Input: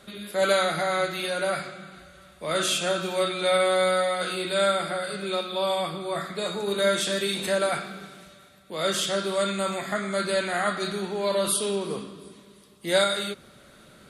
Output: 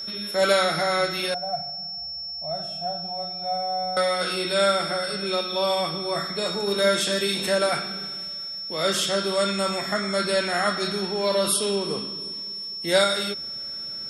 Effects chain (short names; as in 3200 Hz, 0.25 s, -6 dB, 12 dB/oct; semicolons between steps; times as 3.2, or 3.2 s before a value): 1.34–3.97 EQ curve 130 Hz 0 dB, 470 Hz -28 dB, 710 Hz +8 dB, 1000 Hz -20 dB, 3100 Hz -28 dB; whine 5400 Hz -33 dBFS; gain +2 dB